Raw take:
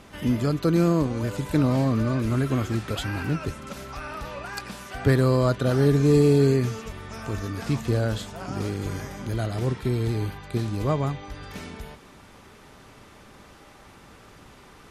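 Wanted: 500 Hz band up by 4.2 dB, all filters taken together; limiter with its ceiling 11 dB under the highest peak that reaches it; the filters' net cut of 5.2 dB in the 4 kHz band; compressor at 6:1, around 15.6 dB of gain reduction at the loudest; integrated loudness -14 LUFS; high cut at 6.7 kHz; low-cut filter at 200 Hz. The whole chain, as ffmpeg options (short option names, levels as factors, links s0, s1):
-af "highpass=200,lowpass=6700,equalizer=f=500:t=o:g=5.5,equalizer=f=4000:t=o:g=-6,acompressor=threshold=0.0316:ratio=6,volume=18.8,alimiter=limit=0.631:level=0:latency=1"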